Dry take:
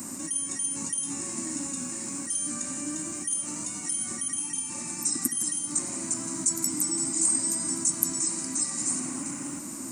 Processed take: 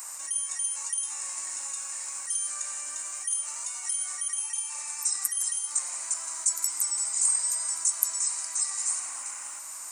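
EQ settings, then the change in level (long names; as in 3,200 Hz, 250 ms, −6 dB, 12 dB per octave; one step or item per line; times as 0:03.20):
high-pass filter 780 Hz 24 dB per octave
0.0 dB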